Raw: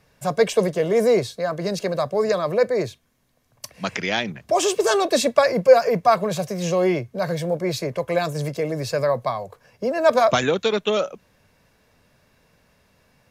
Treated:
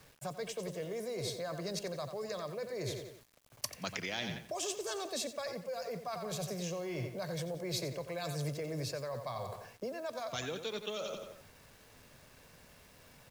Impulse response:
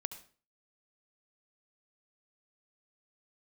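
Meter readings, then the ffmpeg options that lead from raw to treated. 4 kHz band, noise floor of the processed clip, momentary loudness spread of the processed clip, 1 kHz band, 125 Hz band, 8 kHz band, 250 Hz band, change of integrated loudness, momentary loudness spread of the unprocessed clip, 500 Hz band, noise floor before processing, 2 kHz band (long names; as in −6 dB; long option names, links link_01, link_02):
−12.0 dB, −60 dBFS, 21 LU, −20.5 dB, −12.0 dB, −10.5 dB, −16.5 dB, −18.0 dB, 9 LU, −20.0 dB, −62 dBFS, −16.5 dB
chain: -filter_complex "[0:a]aecho=1:1:89|178|267|356:0.282|0.11|0.0429|0.0167,areverse,acompressor=threshold=-29dB:ratio=16,areverse,equalizer=frequency=200:width=4.6:gain=-3.5,acrossover=split=130|3000[link_01][link_02][link_03];[link_02]acompressor=threshold=-37dB:ratio=10[link_04];[link_01][link_04][link_03]amix=inputs=3:normalize=0,acrusher=bits=9:mix=0:aa=0.000001"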